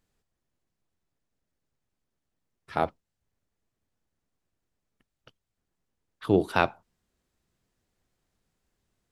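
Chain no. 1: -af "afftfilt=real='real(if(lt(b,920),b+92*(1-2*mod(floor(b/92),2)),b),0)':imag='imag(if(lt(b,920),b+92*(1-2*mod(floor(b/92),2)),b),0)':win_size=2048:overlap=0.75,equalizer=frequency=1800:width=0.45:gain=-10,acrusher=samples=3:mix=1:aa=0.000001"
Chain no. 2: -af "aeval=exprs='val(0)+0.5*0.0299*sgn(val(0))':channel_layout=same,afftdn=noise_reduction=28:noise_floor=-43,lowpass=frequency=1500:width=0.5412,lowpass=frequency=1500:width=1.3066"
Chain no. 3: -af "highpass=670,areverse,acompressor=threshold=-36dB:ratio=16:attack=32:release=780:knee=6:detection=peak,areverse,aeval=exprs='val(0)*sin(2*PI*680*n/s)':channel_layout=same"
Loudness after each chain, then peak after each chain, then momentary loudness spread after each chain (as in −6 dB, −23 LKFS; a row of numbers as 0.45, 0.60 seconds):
−33.0, −32.0, −45.5 LKFS; −11.5, −7.5, −22.0 dBFS; 10, 22, 13 LU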